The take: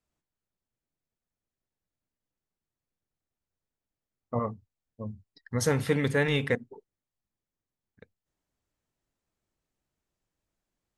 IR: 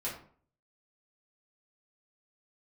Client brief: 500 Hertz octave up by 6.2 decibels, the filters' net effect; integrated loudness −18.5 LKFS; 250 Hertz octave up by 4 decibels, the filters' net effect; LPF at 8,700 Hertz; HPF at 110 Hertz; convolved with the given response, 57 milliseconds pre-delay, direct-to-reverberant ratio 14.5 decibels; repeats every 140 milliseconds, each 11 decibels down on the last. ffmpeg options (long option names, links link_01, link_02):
-filter_complex "[0:a]highpass=110,lowpass=8700,equalizer=frequency=250:width_type=o:gain=3.5,equalizer=frequency=500:width_type=o:gain=6,aecho=1:1:140|280|420:0.282|0.0789|0.0221,asplit=2[link_01][link_02];[1:a]atrim=start_sample=2205,adelay=57[link_03];[link_02][link_03]afir=irnorm=-1:irlink=0,volume=-17.5dB[link_04];[link_01][link_04]amix=inputs=2:normalize=0,volume=6dB"